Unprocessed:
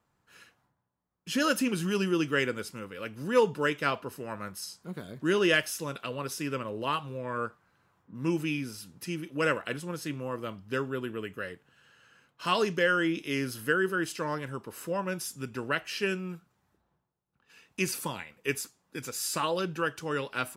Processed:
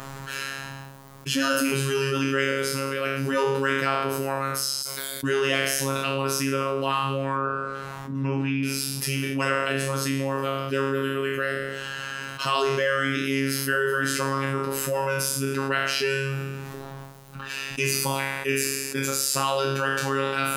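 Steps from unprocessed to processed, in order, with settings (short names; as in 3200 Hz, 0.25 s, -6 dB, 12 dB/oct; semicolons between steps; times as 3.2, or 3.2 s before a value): spectral trails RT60 0.66 s; 4.82–5.24 differentiator; robotiser 136 Hz; 7.34–8.63 treble ducked by the level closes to 2100 Hz, closed at -30.5 dBFS; fast leveller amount 70%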